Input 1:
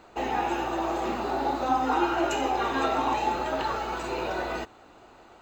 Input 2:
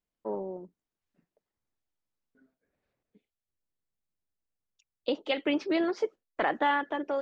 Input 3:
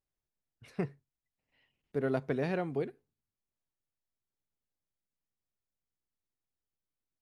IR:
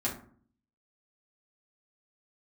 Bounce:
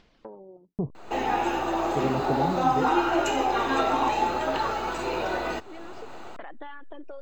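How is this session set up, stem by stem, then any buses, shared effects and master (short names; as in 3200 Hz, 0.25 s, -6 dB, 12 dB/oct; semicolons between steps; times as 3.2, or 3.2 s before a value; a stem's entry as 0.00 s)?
+2.0 dB, 0.95 s, no send, HPF 62 Hz
-9.0 dB, 0.00 s, no send, reverb removal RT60 2 s; LPF 4800 Hz 24 dB/oct; compressor 4:1, threshold -39 dBFS, peak gain reduction 14 dB; auto duck -22 dB, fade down 1.20 s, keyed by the third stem
0.0 dB, 0.00 s, no send, level-crossing sampler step -43 dBFS; steep low-pass 1100 Hz 96 dB/oct; low shelf 310 Hz +7.5 dB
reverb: off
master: upward compressor, threshold -30 dBFS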